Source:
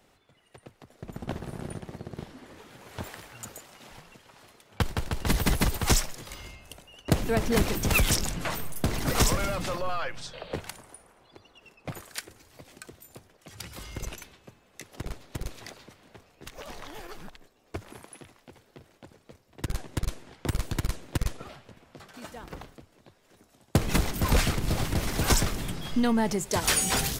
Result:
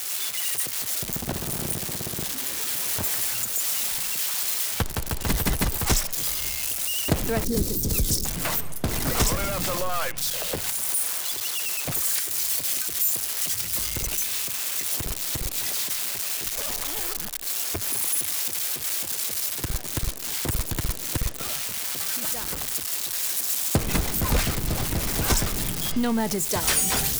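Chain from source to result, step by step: zero-crossing glitches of -22 dBFS; recorder AGC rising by 22 dB/s; 7.44–8.25 s: high-order bell 1.4 kHz -15 dB 2.6 oct

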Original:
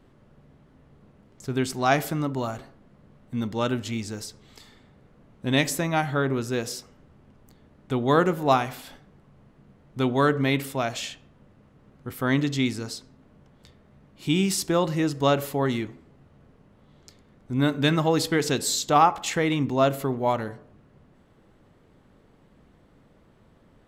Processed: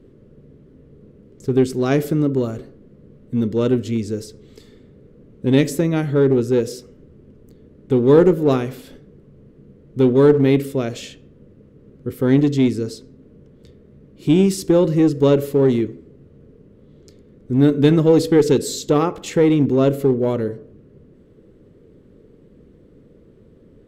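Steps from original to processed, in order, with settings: resonant low shelf 590 Hz +9 dB, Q 3; in parallel at -4 dB: one-sided clip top -12.5 dBFS; on the sum: trim -6 dB

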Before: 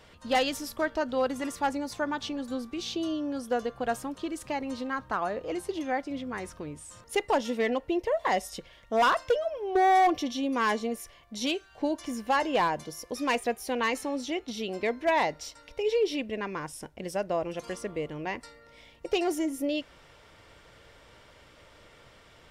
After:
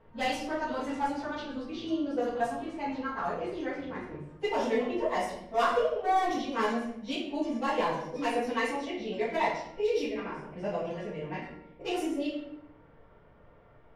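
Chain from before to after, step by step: level-controlled noise filter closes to 1.1 kHz, open at -23.5 dBFS; plain phase-vocoder stretch 0.62×; simulated room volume 180 m³, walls mixed, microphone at 1.6 m; trim -4.5 dB

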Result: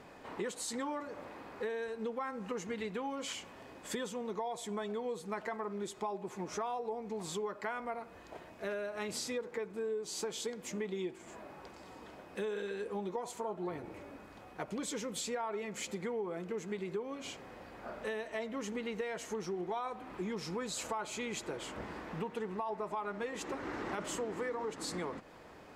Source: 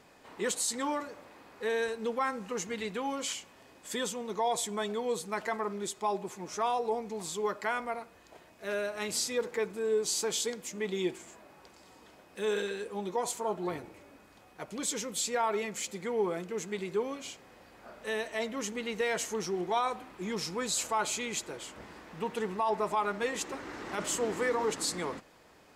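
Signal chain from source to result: treble shelf 3.2 kHz -10.5 dB; compression 6:1, threshold -42 dBFS, peak gain reduction 15.5 dB; trim +6 dB

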